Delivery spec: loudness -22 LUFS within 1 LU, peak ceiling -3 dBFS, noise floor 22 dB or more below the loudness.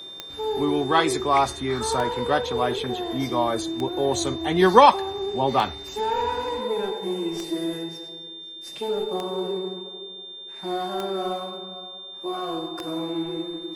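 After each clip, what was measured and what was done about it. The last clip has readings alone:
clicks 8; steady tone 3600 Hz; tone level -37 dBFS; loudness -24.5 LUFS; peak -1.0 dBFS; loudness target -22.0 LUFS
-> de-click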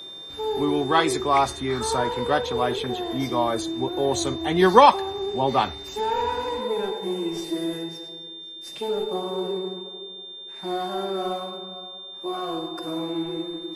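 clicks 0; steady tone 3600 Hz; tone level -37 dBFS
-> notch 3600 Hz, Q 30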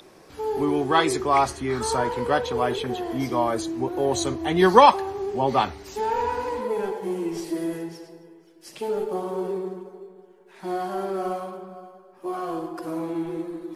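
steady tone none; loudness -24.5 LUFS; peak -1.5 dBFS; loudness target -22.0 LUFS
-> gain +2.5 dB; limiter -3 dBFS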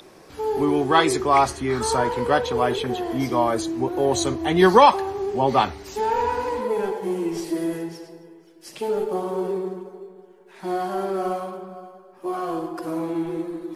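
loudness -22.5 LUFS; peak -3.0 dBFS; noise floor -49 dBFS

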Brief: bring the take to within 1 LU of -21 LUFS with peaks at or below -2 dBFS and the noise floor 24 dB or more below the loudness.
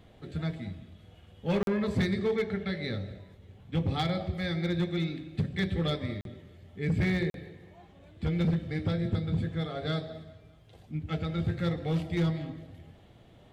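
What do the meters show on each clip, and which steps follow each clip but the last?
clipped 1.3%; flat tops at -22.0 dBFS; dropouts 3; longest dropout 42 ms; loudness -31.5 LUFS; peak -22.0 dBFS; loudness target -21.0 LUFS
-> clip repair -22 dBFS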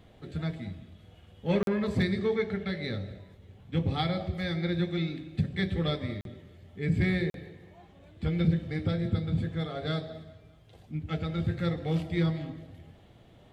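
clipped 0.0%; dropouts 3; longest dropout 42 ms
-> interpolate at 1.63/6.21/7.3, 42 ms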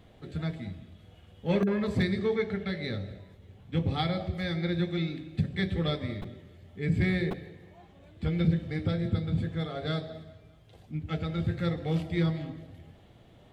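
dropouts 0; loudness -31.0 LUFS; peak -14.0 dBFS; loudness target -21.0 LUFS
-> gain +10 dB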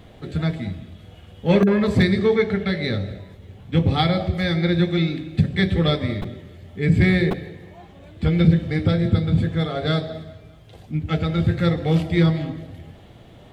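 loudness -21.0 LUFS; peak -4.0 dBFS; noise floor -46 dBFS

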